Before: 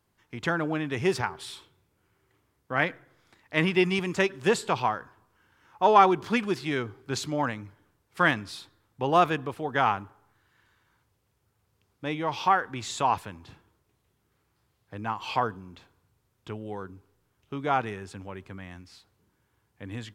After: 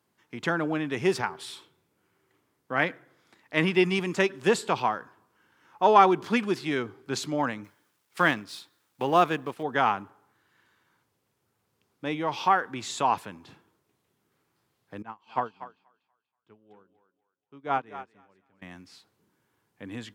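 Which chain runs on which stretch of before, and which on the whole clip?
0:07.64–0:09.63: mu-law and A-law mismatch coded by A + one half of a high-frequency compander encoder only
0:15.02–0:18.62: low-pass filter 3,600 Hz 6 dB per octave + feedback echo with a high-pass in the loop 241 ms, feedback 39%, high-pass 550 Hz, level −4 dB + expander for the loud parts 2.5 to 1, over −39 dBFS
whole clip: high-pass filter 160 Hz 12 dB per octave; parametric band 230 Hz +2 dB 1.6 octaves

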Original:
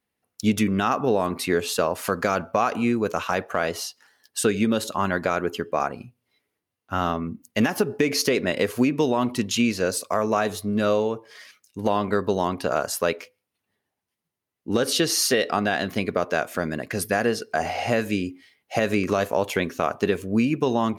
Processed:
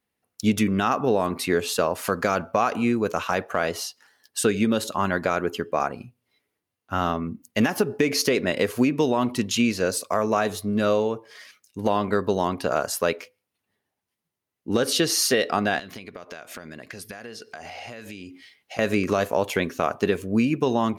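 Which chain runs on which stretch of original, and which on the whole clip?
0:15.79–0:18.79: parametric band 3,700 Hz +6.5 dB 2.5 octaves + downward compressor 8 to 1, threshold −35 dBFS
whole clip: no processing

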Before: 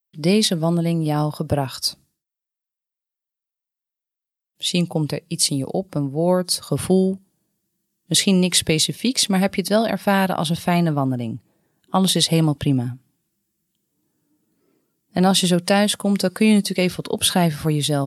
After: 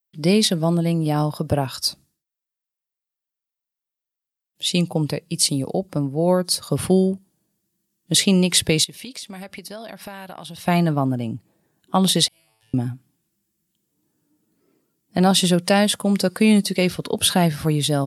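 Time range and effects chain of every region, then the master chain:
0:08.84–0:10.68: low-shelf EQ 420 Hz −7.5 dB + downward compressor 5 to 1, threshold −33 dBFS
0:12.28–0:12.74: guitar amp tone stack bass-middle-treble 10-0-10 + downward compressor 2.5 to 1, threshold −43 dBFS + tuned comb filter 110 Hz, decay 1.1 s, mix 100%
whole clip: no processing

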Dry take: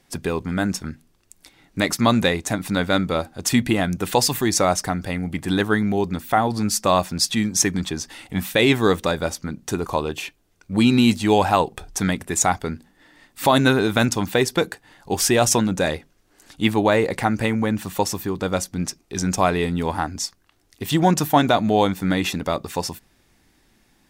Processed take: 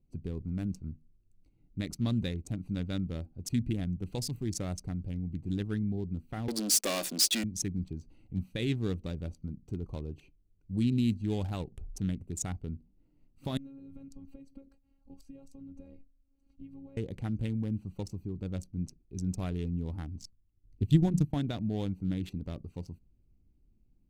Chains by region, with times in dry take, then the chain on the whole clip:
0:06.48–0:07.44: high-shelf EQ 5,500 Hz +2.5 dB + leveller curve on the samples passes 5 + high-pass filter 320 Hz 24 dB per octave
0:13.57–0:16.97: downward compressor 16 to 1, threshold −26 dBFS + phases set to zero 274 Hz
0:20.20–0:21.34: low-shelf EQ 290 Hz +8.5 dB + mains-hum notches 60/120/180/240 Hz + transient designer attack +5 dB, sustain −10 dB
whole clip: adaptive Wiener filter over 25 samples; guitar amp tone stack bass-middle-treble 10-0-1; level +5.5 dB

